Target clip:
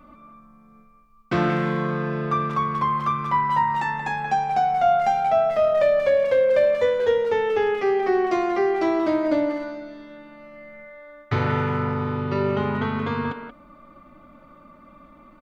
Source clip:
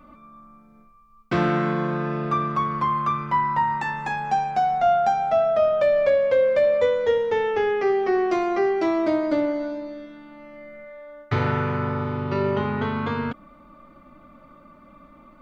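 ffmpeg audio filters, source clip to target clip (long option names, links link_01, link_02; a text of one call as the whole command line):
ffmpeg -i in.wav -filter_complex "[0:a]asplit=2[link_01][link_02];[link_02]adelay=180,highpass=300,lowpass=3400,asoftclip=type=hard:threshold=-18.5dB,volume=-7dB[link_03];[link_01][link_03]amix=inputs=2:normalize=0" out.wav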